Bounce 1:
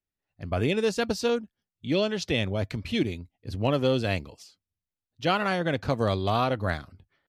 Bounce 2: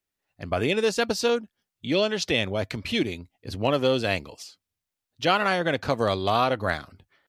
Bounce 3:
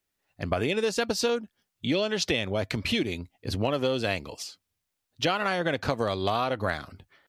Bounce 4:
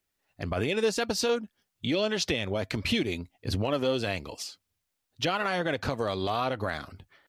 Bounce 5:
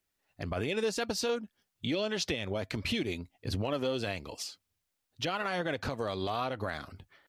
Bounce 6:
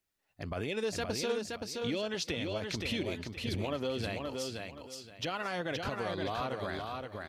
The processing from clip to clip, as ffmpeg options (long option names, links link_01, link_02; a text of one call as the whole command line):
ffmpeg -i in.wav -filter_complex "[0:a]asplit=2[link_01][link_02];[link_02]acompressor=threshold=-33dB:ratio=6,volume=-2dB[link_03];[link_01][link_03]amix=inputs=2:normalize=0,lowshelf=frequency=230:gain=-10,volume=2.5dB" out.wav
ffmpeg -i in.wav -af "acompressor=threshold=-27dB:ratio=6,volume=4dB" out.wav
ffmpeg -i in.wav -af "alimiter=limit=-17.5dB:level=0:latency=1:release=48,aphaser=in_gain=1:out_gain=1:delay=4.9:decay=0.22:speed=1.7:type=triangular" out.wav
ffmpeg -i in.wav -af "alimiter=limit=-20.5dB:level=0:latency=1:release=245,volume=-1.5dB" out.wav
ffmpeg -i in.wav -af "aecho=1:1:522|1044|1566|2088:0.631|0.164|0.0427|0.0111,volume=-3dB" out.wav